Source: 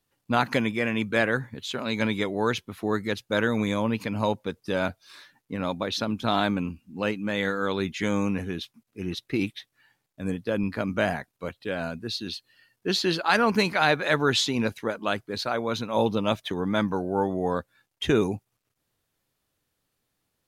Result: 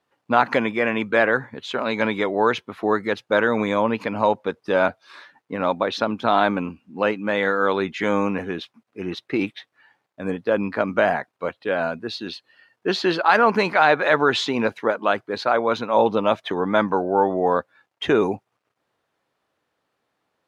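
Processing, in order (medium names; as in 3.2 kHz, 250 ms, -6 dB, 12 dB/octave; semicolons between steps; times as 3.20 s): in parallel at +2 dB: peak limiter -15.5 dBFS, peak gain reduction 8 dB; on the sum: band-pass filter 860 Hz, Q 0.68; trim +3 dB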